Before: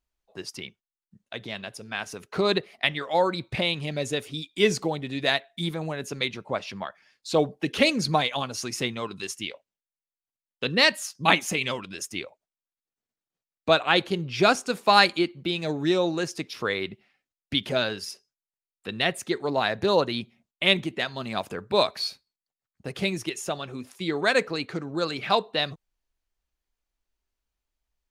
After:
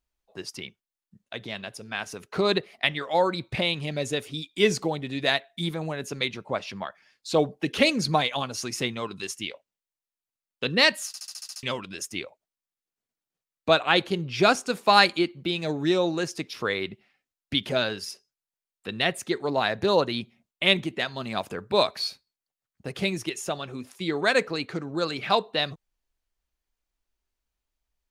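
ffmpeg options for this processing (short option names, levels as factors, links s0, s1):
-filter_complex "[0:a]asplit=9[s0][s1][s2][s3][s4][s5][s6][s7][s8];[s0]atrim=end=11.142[s9];[s1]atrim=start=11.068:end=11.142[s10];[s2]atrim=start=11.068:end=11.142[s11];[s3]atrim=start=11.068:end=11.142[s12];[s4]atrim=start=11.068:end=11.142[s13];[s5]atrim=start=11.068:end=11.142[s14];[s6]atrim=start=11.068:end=11.142[s15];[s7]atrim=start=11.068:end=11.142[s16];[s8]atrim=start=11.628[s17];[s9][s10]acrossfade=d=0.004:c1=hsin:c2=hsin[s18];[s18][s11]acrossfade=d=0.004:c1=hsin:c2=hsin[s19];[s19][s12]acrossfade=d=0.004:c1=hsin:c2=hsin[s20];[s20][s13]acrossfade=d=0.004:c1=hsin:c2=hsin[s21];[s21][s14]acrossfade=d=0.004:c1=hsin:c2=hsin[s22];[s22][s15]acrossfade=d=0.004:c1=hsin:c2=hsin[s23];[s23][s16]acrossfade=d=0.004:c1=hsin:c2=hsin[s24];[s24][s17]acrossfade=d=0.004:c1=hsin:c2=hsin"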